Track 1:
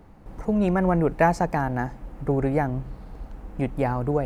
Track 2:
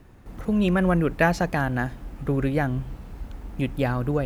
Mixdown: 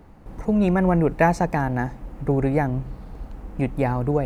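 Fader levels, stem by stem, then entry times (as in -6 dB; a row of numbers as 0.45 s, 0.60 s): +1.5 dB, -13.0 dB; 0.00 s, 0.00 s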